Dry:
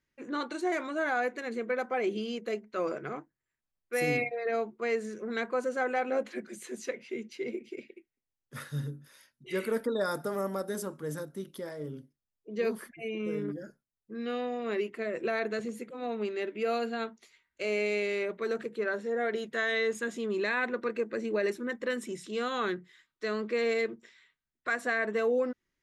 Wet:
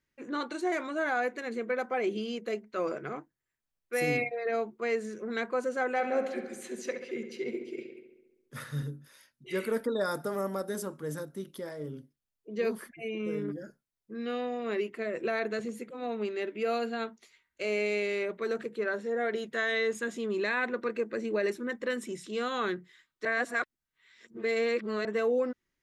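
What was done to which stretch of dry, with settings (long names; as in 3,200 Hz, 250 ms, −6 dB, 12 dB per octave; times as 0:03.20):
0:05.93–0:08.83: feedback echo with a low-pass in the loop 68 ms, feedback 67%, low-pass 4,100 Hz, level −8 dB
0:23.25–0:25.05: reverse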